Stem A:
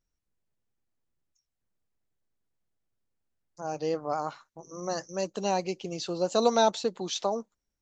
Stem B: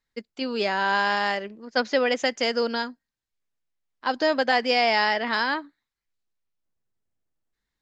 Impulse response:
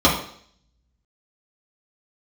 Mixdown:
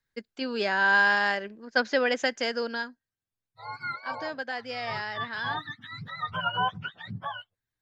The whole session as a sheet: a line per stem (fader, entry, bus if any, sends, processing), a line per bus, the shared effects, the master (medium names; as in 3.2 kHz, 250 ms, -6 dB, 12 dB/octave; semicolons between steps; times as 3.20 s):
-1.0 dB, 0.00 s, no send, spectrum inverted on a logarithmic axis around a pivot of 820 Hz; bass shelf 460 Hz -12 dB
-3.0 dB, 0.00 s, no send, peaking EQ 1.6 kHz +9 dB 0.22 oct; auto duck -11 dB, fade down 1.35 s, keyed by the first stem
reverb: none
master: none